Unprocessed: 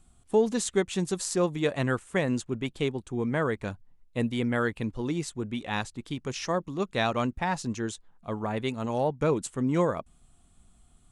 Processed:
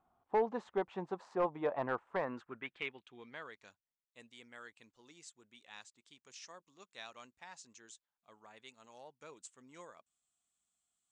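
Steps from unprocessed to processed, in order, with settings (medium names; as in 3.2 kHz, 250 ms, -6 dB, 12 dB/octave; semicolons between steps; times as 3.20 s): band-pass sweep 880 Hz -> 7.5 kHz, 2.09–3.79 s; overload inside the chain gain 27.5 dB; tape spacing loss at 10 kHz 23 dB; trim +4.5 dB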